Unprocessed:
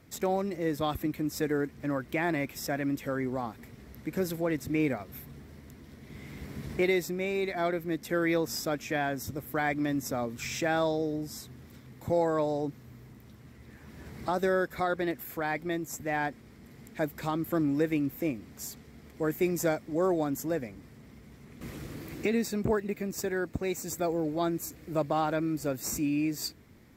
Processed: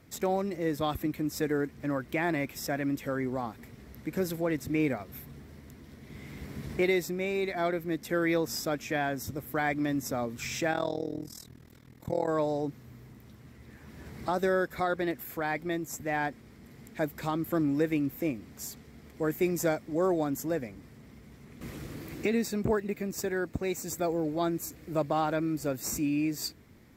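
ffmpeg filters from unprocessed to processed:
ffmpeg -i in.wav -filter_complex "[0:a]asplit=3[link_01][link_02][link_03];[link_01]afade=type=out:start_time=10.71:duration=0.02[link_04];[link_02]tremolo=f=40:d=0.919,afade=type=in:start_time=10.71:duration=0.02,afade=type=out:start_time=12.27:duration=0.02[link_05];[link_03]afade=type=in:start_time=12.27:duration=0.02[link_06];[link_04][link_05][link_06]amix=inputs=3:normalize=0" out.wav

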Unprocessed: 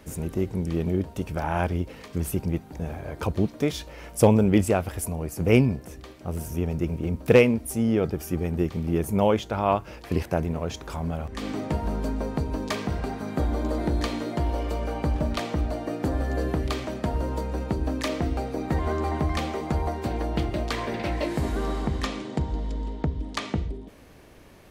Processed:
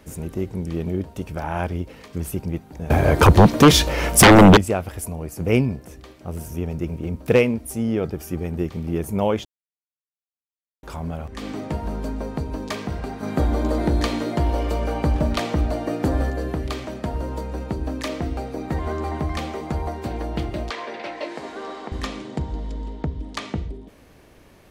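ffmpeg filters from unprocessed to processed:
ffmpeg -i in.wav -filter_complex "[0:a]asettb=1/sr,asplit=3[link_01][link_02][link_03];[link_01]atrim=end=2.904[link_04];[link_02]atrim=start=2.9:end=4.57,asetpts=PTS-STARTPTS,afade=type=in:duration=0.004:curve=qsin,afade=type=out:start_time=1.666:duration=0.004:curve=qsin,aeval=exprs='0.562*sin(PI/2*5.62*val(0)/0.562)':channel_layout=same[link_05];[link_03]atrim=start=4.566[link_06];[link_04][link_05]acrossfade=duration=0.004:curve1=hsin:curve2=qsin[link_07];[link_07][link_06]acrossfade=duration=0.004:curve1=qsin:curve2=hsin,asettb=1/sr,asplit=3[link_08][link_09][link_10];[link_08]atrim=end=20.704[link_11];[link_09]atrim=start=20.7:end=21.92,asetpts=PTS-STARTPTS,afade=type=in:duration=0.004:curve=qsin,afade=type=out:start_time=1.216:duration=0.004:curve=qsin,highpass=420,lowpass=5900[link_12];[link_10]atrim=start=21.916[link_13];[link_11][link_12]acrossfade=duration=0.004:curve1=hsin:curve2=qsin[link_14];[link_14][link_13]acrossfade=duration=0.004:curve1=qsin:curve2=hsin,asplit=5[link_15][link_16][link_17][link_18][link_19];[link_15]atrim=end=9.45,asetpts=PTS-STARTPTS,afade=type=out:start_time=9.446:duration=0.004:curve=hsin[link_20];[link_16]atrim=start=9.45:end=10.83,asetpts=PTS-STARTPTS,volume=0[link_21];[link_17]atrim=start=10.83:end=13.232,asetpts=PTS-STARTPTS,afade=type=in:duration=0.004:curve=hsin[link_22];[link_18]atrim=start=13.228:end=16.302,asetpts=PTS-STARTPTS,volume=5dB[link_23];[link_19]atrim=start=16.298[link_24];[link_20][link_21][link_22]concat=n=3:v=0:a=1[link_25];[link_25][link_23]acrossfade=duration=0.004:curve1=hsin:curve2=hsin[link_26];[link_26][link_24]acrossfade=duration=0.004:curve1=hsin:curve2=hsin" out.wav

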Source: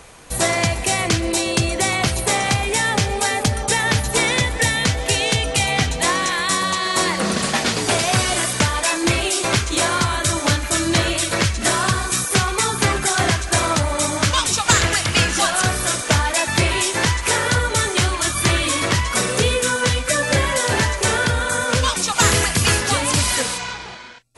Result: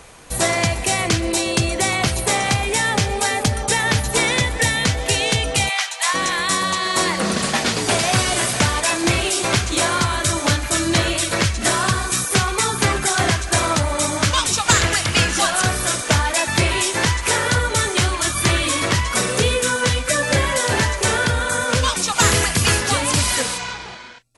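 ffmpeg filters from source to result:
ffmpeg -i in.wav -filter_complex "[0:a]asplit=3[link_01][link_02][link_03];[link_01]afade=type=out:start_time=5.68:duration=0.02[link_04];[link_02]highpass=frequency=840:width=0.5412,highpass=frequency=840:width=1.3066,afade=type=in:start_time=5.68:duration=0.02,afade=type=out:start_time=6.13:duration=0.02[link_05];[link_03]afade=type=in:start_time=6.13:duration=0.02[link_06];[link_04][link_05][link_06]amix=inputs=3:normalize=0,asplit=2[link_07][link_08];[link_08]afade=type=in:start_time=7.41:duration=0.01,afade=type=out:start_time=8.3:duration=0.01,aecho=0:1:500|1000|1500|2000|2500|3000|3500|4000|4500:0.316228|0.205548|0.133606|0.0868441|0.0564486|0.0366916|0.0238495|0.0155022|0.0100764[link_09];[link_07][link_09]amix=inputs=2:normalize=0" out.wav

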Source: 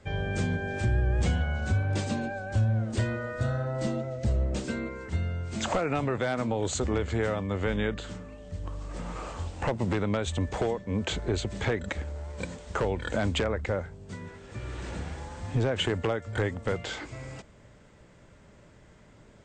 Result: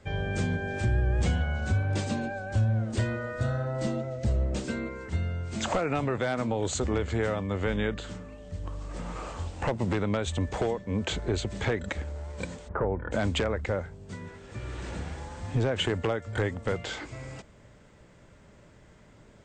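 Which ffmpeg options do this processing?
ffmpeg -i in.wav -filter_complex "[0:a]asplit=3[link_01][link_02][link_03];[link_01]afade=type=out:start_time=12.67:duration=0.02[link_04];[link_02]lowpass=frequency=1500:width=0.5412,lowpass=frequency=1500:width=1.3066,afade=type=in:start_time=12.67:duration=0.02,afade=type=out:start_time=13.11:duration=0.02[link_05];[link_03]afade=type=in:start_time=13.11:duration=0.02[link_06];[link_04][link_05][link_06]amix=inputs=3:normalize=0" out.wav

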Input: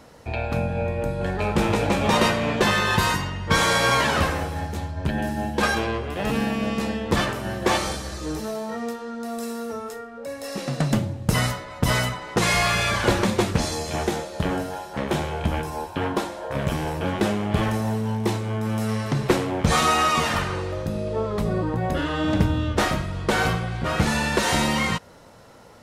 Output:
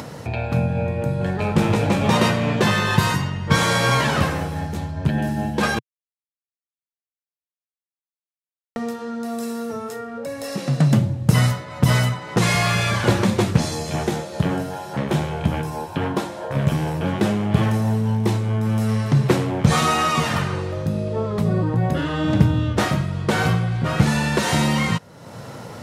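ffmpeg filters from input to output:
ffmpeg -i in.wav -filter_complex "[0:a]asplit=3[link_01][link_02][link_03];[link_01]atrim=end=5.79,asetpts=PTS-STARTPTS,afade=type=out:start_time=5.786:duration=0.004:curve=hsin[link_04];[link_02]atrim=start=5.79:end=8.76,asetpts=PTS-STARTPTS,volume=0[link_05];[link_03]atrim=start=8.76,asetpts=PTS-STARTPTS,afade=type=in:duration=0.004:curve=hsin[link_06];[link_04][link_05][link_06]concat=n=3:v=0:a=1,highpass=94,equalizer=frequency=130:width_type=o:width=1.2:gain=10,acompressor=mode=upward:threshold=-24dB:ratio=2.5" out.wav

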